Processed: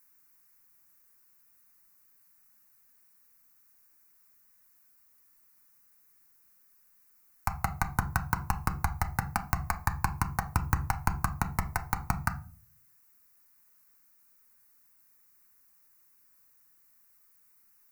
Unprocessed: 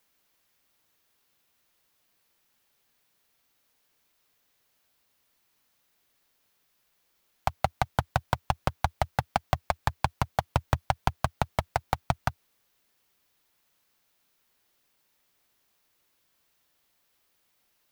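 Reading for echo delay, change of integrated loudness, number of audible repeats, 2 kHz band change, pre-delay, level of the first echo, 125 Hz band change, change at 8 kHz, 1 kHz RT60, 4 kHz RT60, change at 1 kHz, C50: no echo, -2.0 dB, no echo, +0.5 dB, 3 ms, no echo, -1.0 dB, +4.0 dB, 0.35 s, 0.25 s, -3.5 dB, 15.5 dB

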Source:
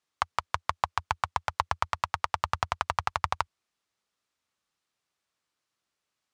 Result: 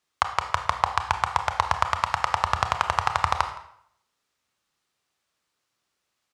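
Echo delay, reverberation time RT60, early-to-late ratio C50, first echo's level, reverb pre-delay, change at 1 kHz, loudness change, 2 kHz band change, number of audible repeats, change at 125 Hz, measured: 167 ms, 0.65 s, 9.5 dB, -21.0 dB, 25 ms, +6.0 dB, +6.0 dB, +6.0 dB, 1, +6.0 dB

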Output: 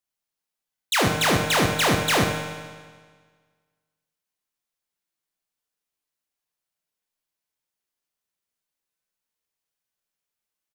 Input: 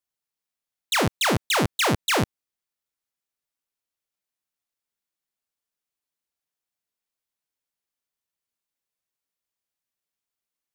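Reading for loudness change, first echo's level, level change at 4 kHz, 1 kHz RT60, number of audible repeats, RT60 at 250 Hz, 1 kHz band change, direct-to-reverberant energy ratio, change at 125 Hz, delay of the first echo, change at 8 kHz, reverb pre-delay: +2.0 dB, -10.5 dB, +2.0 dB, 1.6 s, 1, 1.6 s, +2.0 dB, 1.5 dB, +2.0 dB, 76 ms, +2.0 dB, 7 ms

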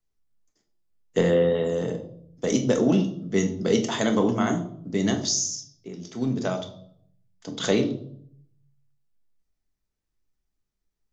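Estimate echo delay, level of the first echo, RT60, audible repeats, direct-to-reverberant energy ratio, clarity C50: no echo, no echo, 0.65 s, no echo, 4.0 dB, 11.0 dB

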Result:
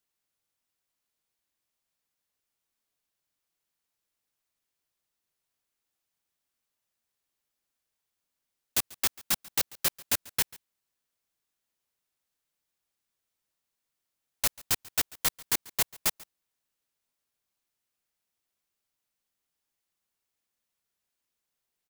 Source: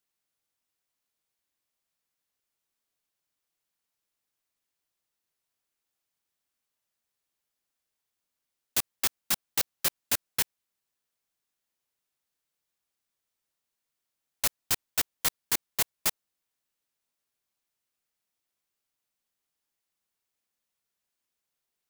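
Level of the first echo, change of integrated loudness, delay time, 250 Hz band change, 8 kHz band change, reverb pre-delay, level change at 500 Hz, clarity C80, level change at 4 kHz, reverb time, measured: -22.0 dB, 0.0 dB, 140 ms, +0.5 dB, 0.0 dB, no reverb, 0.0 dB, no reverb, 0.0 dB, no reverb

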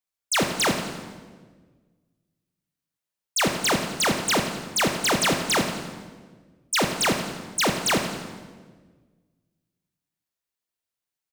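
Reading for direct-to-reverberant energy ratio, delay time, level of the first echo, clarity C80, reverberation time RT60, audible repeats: 4.5 dB, 84 ms, -13.5 dB, 7.0 dB, 1.5 s, 2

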